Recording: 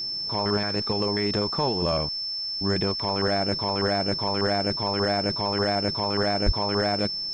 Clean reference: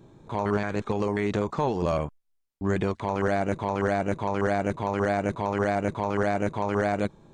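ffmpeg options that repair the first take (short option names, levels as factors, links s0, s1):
-filter_complex "[0:a]bandreject=f=5300:w=30,asplit=3[s0][s1][s2];[s0]afade=t=out:st=6.45:d=0.02[s3];[s1]highpass=f=140:w=0.5412,highpass=f=140:w=1.3066,afade=t=in:st=6.45:d=0.02,afade=t=out:st=6.57:d=0.02[s4];[s2]afade=t=in:st=6.57:d=0.02[s5];[s3][s4][s5]amix=inputs=3:normalize=0,agate=range=0.0891:threshold=0.0708"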